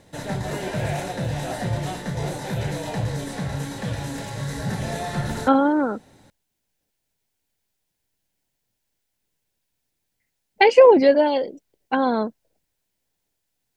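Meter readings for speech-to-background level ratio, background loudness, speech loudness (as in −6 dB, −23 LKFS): 10.5 dB, −28.5 LKFS, −18.0 LKFS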